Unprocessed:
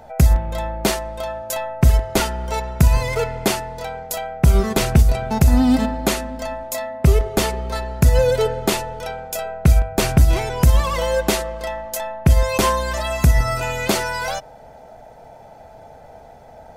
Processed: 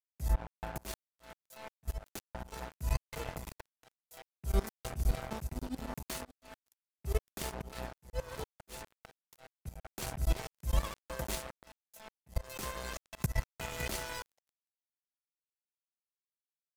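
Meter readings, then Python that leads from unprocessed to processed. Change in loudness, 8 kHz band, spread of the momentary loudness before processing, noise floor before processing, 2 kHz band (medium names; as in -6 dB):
-20.0 dB, -18.5 dB, 11 LU, -43 dBFS, -19.0 dB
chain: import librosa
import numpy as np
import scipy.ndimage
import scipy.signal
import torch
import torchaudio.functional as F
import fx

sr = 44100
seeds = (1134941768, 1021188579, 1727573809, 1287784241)

y = 10.0 ** (-4.5 / 20.0) * np.tanh(x / 10.0 ** (-4.5 / 20.0))
y = fx.level_steps(y, sr, step_db=14)
y = fx.echo_feedback(y, sr, ms=369, feedback_pct=56, wet_db=-18.5)
y = fx.step_gate(y, sr, bpm=96, pattern='xxx.xx.x', floor_db=-12.0, edge_ms=4.5)
y = fx.high_shelf(y, sr, hz=6400.0, db=7.0)
y = y + 10.0 ** (-13.0 / 20.0) * np.pad(y, (int(561 * sr / 1000.0), 0))[:len(y)]
y = np.sign(y) * np.maximum(np.abs(y) - 10.0 ** (-27.0 / 20.0), 0.0)
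y = fx.auto_swell(y, sr, attack_ms=212.0)
y = F.gain(torch.from_numpy(y), -5.0).numpy()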